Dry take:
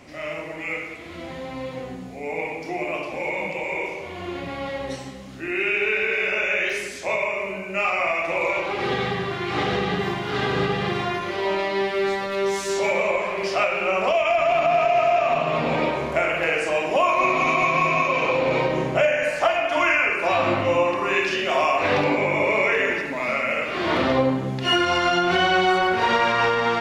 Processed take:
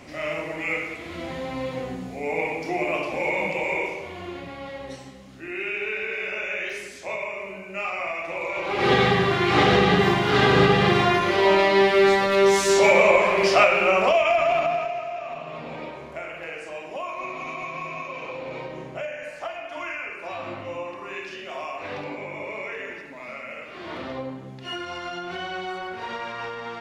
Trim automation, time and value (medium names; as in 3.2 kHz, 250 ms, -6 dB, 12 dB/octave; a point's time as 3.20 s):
3.70 s +2 dB
4.55 s -6.5 dB
8.50 s -6.5 dB
8.91 s +6 dB
13.51 s +6 dB
14.60 s -2 dB
15.04 s -13 dB